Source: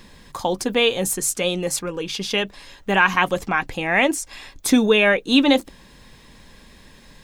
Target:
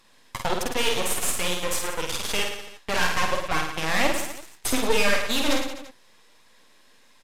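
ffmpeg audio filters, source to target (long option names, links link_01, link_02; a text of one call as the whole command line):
ffmpeg -i in.wav -filter_complex "[0:a]highpass=370,acompressor=threshold=-30dB:ratio=1.5,aeval=exprs='0.335*sin(PI/2*2*val(0)/0.335)':channel_layout=same,aeval=exprs='0.355*(cos(1*acos(clip(val(0)/0.355,-1,1)))-cos(1*PI/2))+0.0355*(cos(3*acos(clip(val(0)/0.355,-1,1)))-cos(3*PI/2))+0.0501*(cos(7*acos(clip(val(0)/0.355,-1,1)))-cos(7*PI/2))':channel_layout=same,flanger=delay=0.8:depth=8.7:regen=34:speed=1.4:shape=sinusoidal,aeval=exprs='max(val(0),0)':channel_layout=same,asplit=2[link_01][link_02];[link_02]aecho=0:1:50|107.5|173.6|249.7|337.1:0.631|0.398|0.251|0.158|0.1[link_03];[link_01][link_03]amix=inputs=2:normalize=0" -ar 32000 -c:a libvorbis -b:a 128k out.ogg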